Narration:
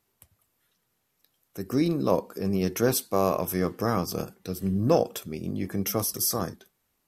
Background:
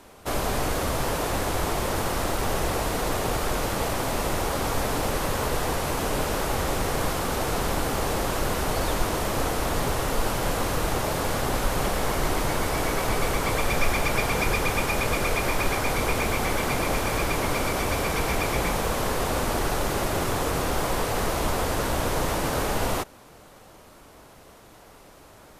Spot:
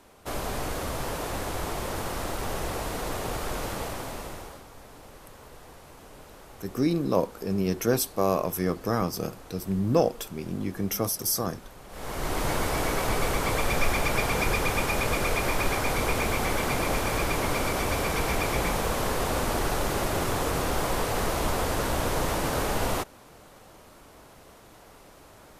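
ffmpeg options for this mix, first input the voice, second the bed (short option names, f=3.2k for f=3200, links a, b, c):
-filter_complex "[0:a]adelay=5050,volume=-0.5dB[a];[1:a]volume=15dB,afade=t=out:st=3.7:d=0.95:silence=0.149624,afade=t=in:st=11.88:d=0.61:silence=0.0944061[b];[a][b]amix=inputs=2:normalize=0"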